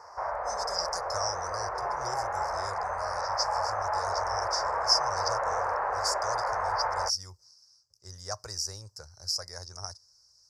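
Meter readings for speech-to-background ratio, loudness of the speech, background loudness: -3.0 dB, -34.0 LUFS, -31.0 LUFS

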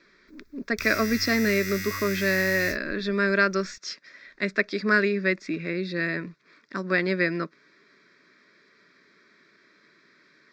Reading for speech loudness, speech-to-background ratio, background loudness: -25.5 LUFS, 7.0 dB, -32.5 LUFS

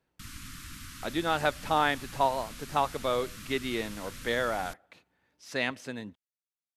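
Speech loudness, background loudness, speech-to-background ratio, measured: -31.0 LUFS, -44.0 LUFS, 13.0 dB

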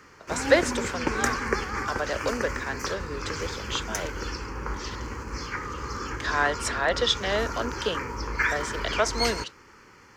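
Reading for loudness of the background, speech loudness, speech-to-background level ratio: -31.0 LUFS, -29.0 LUFS, 2.0 dB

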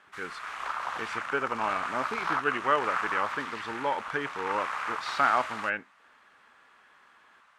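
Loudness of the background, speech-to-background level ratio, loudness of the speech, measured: -34.0 LUFS, 2.5 dB, -31.5 LUFS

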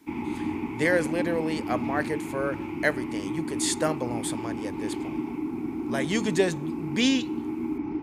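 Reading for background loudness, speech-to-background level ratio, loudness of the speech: -32.0 LUFS, 3.5 dB, -28.5 LUFS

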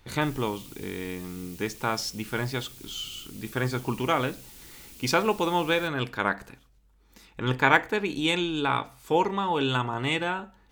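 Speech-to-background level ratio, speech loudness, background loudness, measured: 18.5 dB, -27.5 LUFS, -46.0 LUFS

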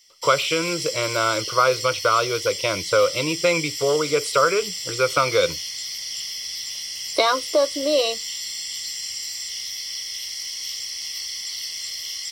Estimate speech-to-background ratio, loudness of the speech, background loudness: 6.5 dB, -21.5 LUFS, -28.0 LUFS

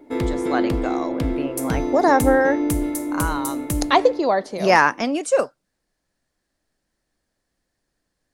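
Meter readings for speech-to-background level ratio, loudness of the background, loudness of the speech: 3.5 dB, -24.5 LUFS, -21.0 LUFS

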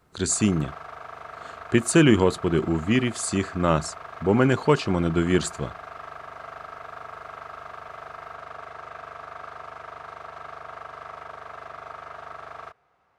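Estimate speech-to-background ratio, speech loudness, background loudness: 17.5 dB, -22.5 LUFS, -40.0 LUFS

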